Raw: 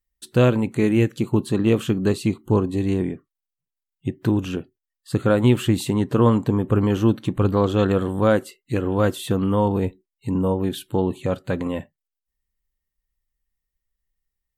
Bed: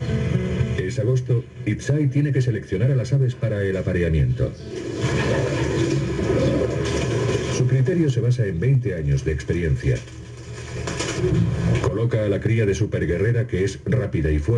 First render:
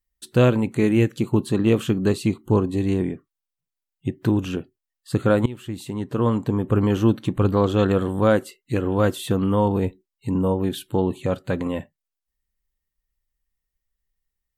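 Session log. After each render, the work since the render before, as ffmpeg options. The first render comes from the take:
-filter_complex "[0:a]asplit=2[s0][s1];[s0]atrim=end=5.46,asetpts=PTS-STARTPTS,afade=t=out:st=5.456:d=0.004:c=hsin:silence=0.0944061[s2];[s1]atrim=start=5.46,asetpts=PTS-STARTPTS,afade=t=in:d=1.39:silence=0.0944061[s3];[s2][s3]concat=n=2:v=0:a=1"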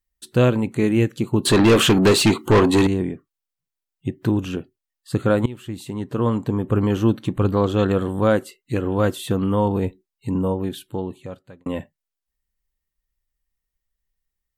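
-filter_complex "[0:a]asettb=1/sr,asplit=3[s0][s1][s2];[s0]atrim=end=1.454[s3];[s1]atrim=start=1.45:end=2.87,asetpts=PTS-STARTPTS,afade=t=in:d=0.004:c=qsin,afade=t=out:st=1.416:d=0.004:c=qsin,asplit=2[s4][s5];[s5]highpass=f=720:p=1,volume=22.4,asoftclip=type=tanh:threshold=0.501[s6];[s4][s6]amix=inputs=2:normalize=0,lowpass=f=6400:p=1,volume=0.501[s7];[s2]atrim=start=2.866[s8];[s3][s7]acrossfade=d=0.004:c1=hsin:c2=qsin[s9];[s9][s8]acrossfade=d=0.004:c1=qsin:c2=hsin,asplit=2[s10][s11];[s10]atrim=end=11.66,asetpts=PTS-STARTPTS,afade=t=out:st=10.35:d=1.31[s12];[s11]atrim=start=11.66,asetpts=PTS-STARTPTS,afade=t=in:d=0.004:c=hsin[s13];[s12][s13]concat=n=2:v=0:a=1"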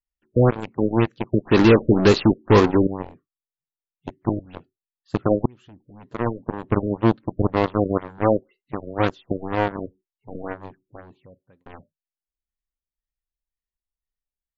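-af "aeval=exprs='0.596*(cos(1*acos(clip(val(0)/0.596,-1,1)))-cos(1*PI/2))+0.106*(cos(7*acos(clip(val(0)/0.596,-1,1)))-cos(7*PI/2))+0.00473*(cos(8*acos(clip(val(0)/0.596,-1,1)))-cos(8*PI/2))':c=same,afftfilt=real='re*lt(b*sr/1024,610*pow(7700/610,0.5+0.5*sin(2*PI*2*pts/sr)))':imag='im*lt(b*sr/1024,610*pow(7700/610,0.5+0.5*sin(2*PI*2*pts/sr)))':win_size=1024:overlap=0.75"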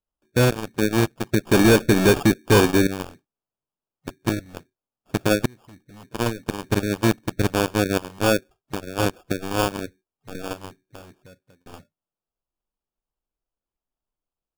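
-af "acrusher=samples=22:mix=1:aa=0.000001,volume=2.99,asoftclip=hard,volume=0.335"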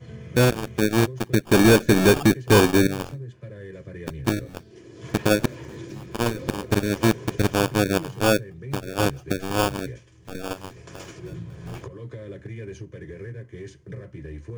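-filter_complex "[1:a]volume=0.141[s0];[0:a][s0]amix=inputs=2:normalize=0"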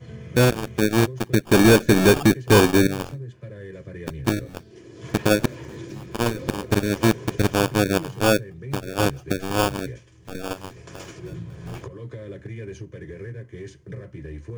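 -af "volume=1.12"

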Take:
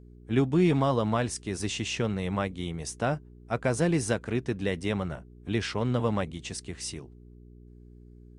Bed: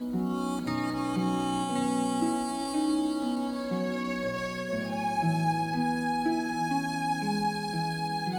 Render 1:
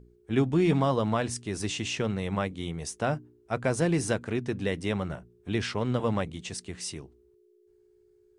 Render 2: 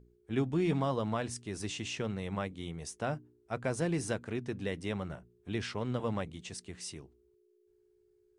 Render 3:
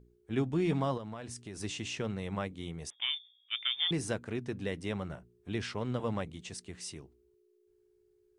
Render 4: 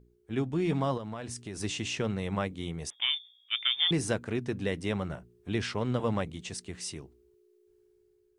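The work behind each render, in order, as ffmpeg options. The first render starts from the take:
-af "bandreject=f=60:t=h:w=4,bandreject=f=120:t=h:w=4,bandreject=f=180:t=h:w=4,bandreject=f=240:t=h:w=4,bandreject=f=300:t=h:w=4"
-af "volume=0.473"
-filter_complex "[0:a]asettb=1/sr,asplit=3[s0][s1][s2];[s0]atrim=end=0.974[s3];[s1]atrim=start=0.97:end=1.61,asetpts=PTS-STARTPTS,afade=t=in:d=0.004:c=qsin,afade=t=out:st=0.636:d=0.004:c=qsin,acompressor=threshold=0.0112:ratio=4:attack=3.2:release=140:knee=1:detection=peak[s4];[s2]atrim=start=1.606[s5];[s3][s4]acrossfade=d=0.004:c1=hsin:c2=qsin[s6];[s6][s5]acrossfade=d=0.004:c1=qsin:c2=hsin,asettb=1/sr,asplit=3[s7][s8][s9];[s7]atrim=end=2.904[s10];[s8]atrim=start=2.9:end=3.91,asetpts=PTS-STARTPTS,afade=t=in:d=0.004:c=qsin,afade=t=out:st=1.006:d=0.004:c=qsin,lowpass=f=3100:t=q:w=0.5098,lowpass=f=3100:t=q:w=0.6013,lowpass=f=3100:t=q:w=0.9,lowpass=f=3100:t=q:w=2.563,afreqshift=-3700[s11];[s9]atrim=start=3.906[s12];[s10][s11]acrossfade=d=0.004:c1=hsin:c2=qsin[s13];[s13][s12]acrossfade=d=0.004:c1=qsin:c2=hsin"
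-af "dynaudnorm=f=600:g=3:m=1.68"

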